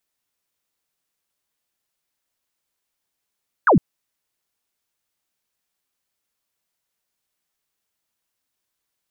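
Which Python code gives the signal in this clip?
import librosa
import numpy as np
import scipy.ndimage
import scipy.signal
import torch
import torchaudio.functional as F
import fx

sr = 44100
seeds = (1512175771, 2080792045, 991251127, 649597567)

y = fx.laser_zap(sr, level_db=-10.0, start_hz=1700.0, end_hz=130.0, length_s=0.11, wave='sine')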